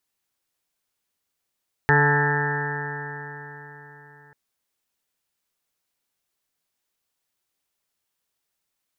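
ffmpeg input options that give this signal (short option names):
-f lavfi -i "aevalsrc='0.112*pow(10,-3*t/4.05)*sin(2*PI*144.03*t)+0.0316*pow(10,-3*t/4.05)*sin(2*PI*288.27*t)+0.0794*pow(10,-3*t/4.05)*sin(2*PI*432.91*t)+0.0112*pow(10,-3*t/4.05)*sin(2*PI*578.16*t)+0.02*pow(10,-3*t/4.05)*sin(2*PI*724.22*t)+0.0944*pow(10,-3*t/4.05)*sin(2*PI*871.28*t)+0.02*pow(10,-3*t/4.05)*sin(2*PI*1019.54*t)+0.0119*pow(10,-3*t/4.05)*sin(2*PI*1169.2*t)+0.0398*pow(10,-3*t/4.05)*sin(2*PI*1320.44*t)+0.0299*pow(10,-3*t/4.05)*sin(2*PI*1473.45*t)+0.0841*pow(10,-3*t/4.05)*sin(2*PI*1628.42*t)+0.112*pow(10,-3*t/4.05)*sin(2*PI*1785.52*t)+0.02*pow(10,-3*t/4.05)*sin(2*PI*1944.93*t)':d=2.44:s=44100"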